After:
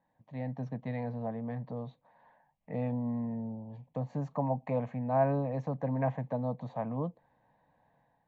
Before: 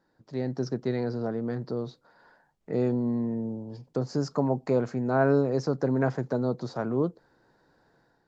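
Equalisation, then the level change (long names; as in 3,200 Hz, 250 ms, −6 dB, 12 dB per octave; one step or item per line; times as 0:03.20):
Bessel low-pass filter 2,500 Hz, order 2
low-shelf EQ 66 Hz −9.5 dB
phaser with its sweep stopped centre 1,400 Hz, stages 6
0.0 dB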